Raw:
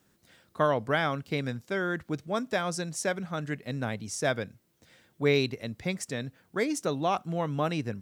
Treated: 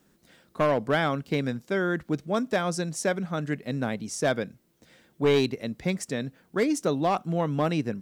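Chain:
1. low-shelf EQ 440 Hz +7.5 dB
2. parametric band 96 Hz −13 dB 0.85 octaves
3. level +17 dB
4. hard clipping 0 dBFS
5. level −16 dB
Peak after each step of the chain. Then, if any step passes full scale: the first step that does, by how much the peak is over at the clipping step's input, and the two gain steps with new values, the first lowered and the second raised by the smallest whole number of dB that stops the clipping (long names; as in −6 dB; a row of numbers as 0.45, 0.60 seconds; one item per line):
−9.0, −8.5, +8.5, 0.0, −16.0 dBFS
step 3, 8.5 dB
step 3 +8 dB, step 5 −7 dB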